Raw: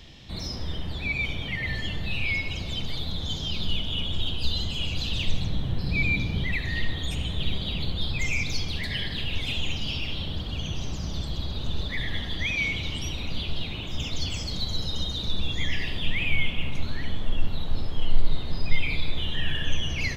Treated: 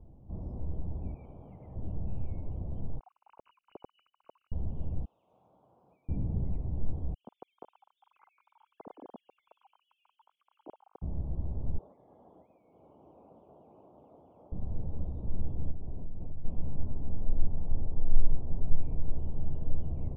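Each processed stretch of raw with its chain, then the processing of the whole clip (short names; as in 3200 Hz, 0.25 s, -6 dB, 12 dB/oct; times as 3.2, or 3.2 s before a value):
1.14–1.76 LPF 2600 Hz 24 dB/oct + tilt +3.5 dB/oct
2.99–4.52 sine-wave speech + brick-wall FIR low-pass 3000 Hz
5.05–6.09 HPF 1200 Hz + compressor, threshold -35 dBFS
7.14–11.02 sine-wave speech + HPF 380 Hz 6 dB/oct + compressor, threshold -26 dBFS
11.78–14.52 BPF 530–2800 Hz + compressor 5:1, threshold -37 dBFS
15.71–16.45 LPF 1100 Hz + compressor, threshold -27 dBFS
whole clip: inverse Chebyshev low-pass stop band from 1700 Hz, stop band 40 dB; low shelf 110 Hz +5.5 dB; gain -7 dB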